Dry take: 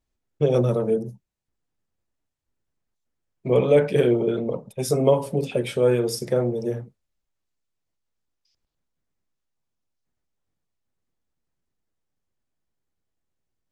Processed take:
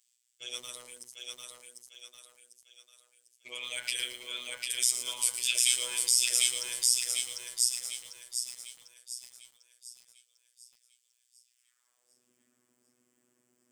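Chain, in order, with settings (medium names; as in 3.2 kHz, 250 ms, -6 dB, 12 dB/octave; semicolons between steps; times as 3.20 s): graphic EQ with 31 bands 160 Hz +7 dB, 250 Hz +4 dB, 800 Hz -8 dB, 4 kHz -11 dB, 8 kHz +12 dB; in parallel at -1 dB: compressor with a negative ratio -25 dBFS, ratio -0.5; on the sum: high-pass sweep 3.8 kHz -> 280 Hz, 11.47–12.26 s; on a send: thinning echo 748 ms, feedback 43%, high-pass 360 Hz, level -3 dB; on the sum: robot voice 123 Hz; loudness maximiser +8.5 dB; bit-crushed delay 113 ms, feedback 55%, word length 6-bit, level -10 dB; trim -4 dB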